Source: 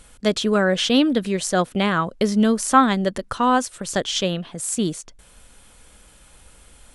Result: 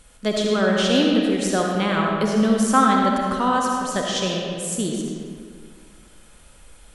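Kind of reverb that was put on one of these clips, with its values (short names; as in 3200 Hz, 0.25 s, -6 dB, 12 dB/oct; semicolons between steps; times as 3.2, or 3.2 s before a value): digital reverb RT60 2.1 s, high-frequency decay 0.65×, pre-delay 25 ms, DRR -1 dB; gain -3.5 dB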